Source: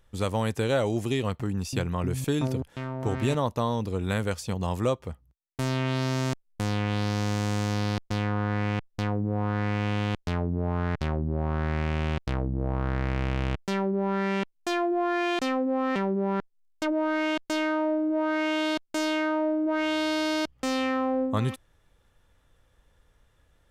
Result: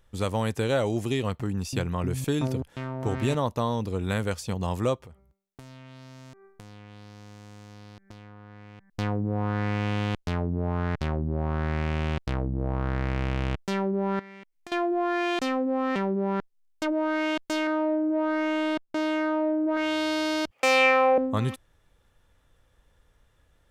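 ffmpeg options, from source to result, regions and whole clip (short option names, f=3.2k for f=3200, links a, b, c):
-filter_complex "[0:a]asettb=1/sr,asplit=3[a][b][c];[a]atrim=end=5.054[d];[b]atrim=start=5.05:end=8.9,asetpts=PTS-STARTPTS,afade=t=in:d=0.004:c=qsin,afade=t=out:st=3.846:d=0.004:c=qsin,bandreject=f=195.3:t=h:w=4,bandreject=f=390.6:t=h:w=4,bandreject=f=585.9:t=h:w=4,bandreject=f=781.2:t=h:w=4,bandreject=f=976.5:t=h:w=4,bandreject=f=1.1718k:t=h:w=4,bandreject=f=1.3671k:t=h:w=4,bandreject=f=1.5624k:t=h:w=4,bandreject=f=1.7577k:t=h:w=4,bandreject=f=1.953k:t=h:w=4,bandreject=f=2.1483k:t=h:w=4,bandreject=f=2.3436k:t=h:w=4,acompressor=threshold=-44dB:ratio=6:attack=3.2:release=140:knee=1:detection=peak[e];[c]atrim=start=8.896[f];[d][e]acrossfade=d=0.004:c1=hsin:c2=qsin[g];[g][f]acrossfade=d=0.004:c1=qsin:c2=hsin,asettb=1/sr,asplit=3[h][i][j];[h]atrim=end=14.194[k];[i]atrim=start=14.19:end=14.72,asetpts=PTS-STARTPTS,afade=t=in:d=0.004:c=qsin,afade=t=out:st=0.526:d=0.004:c=qsin,equalizer=f=2.1k:w=3.2:g=8,acompressor=threshold=-41dB:ratio=8:attack=3.2:release=140:knee=1:detection=peak[l];[j]atrim=start=14.716[m];[k][l]acrossfade=d=0.004:c1=hsin:c2=qsin[n];[n][m]acrossfade=d=0.004:c1=qsin:c2=hsin,asettb=1/sr,asplit=3[o][p][q];[o]atrim=end=17.674[r];[p]atrim=start=17.67:end=19.77,asetpts=PTS-STARTPTS,afade=t=in:d=0.004:c=qsin,afade=t=out:st=2.096:d=0.004:c=qsin,adynamicsmooth=sensitivity=5:basefreq=2.9k,aemphasis=mode=reproduction:type=75fm[s];[q]atrim=start=19.766[t];[r][s]acrossfade=d=0.004:c1=hsin:c2=qsin[u];[u][t]acrossfade=d=0.004:c1=qsin:c2=hsin,asettb=1/sr,asplit=3[v][w][x];[v]atrim=end=20.514[y];[w]atrim=start=20.51:end=21.18,asetpts=PTS-STARTPTS,afade=t=in:d=0.004:c=qsin,afade=t=out:st=0.666:d=0.004:c=qsin,equalizer=f=2.4k:w=4.1:g=13,acontrast=36,highpass=f=580:t=q:w=1.8[z];[x]atrim=start=21.176[aa];[y][z]acrossfade=d=0.004:c1=hsin:c2=qsin[ab];[ab][aa]acrossfade=d=0.004:c1=qsin:c2=hsin"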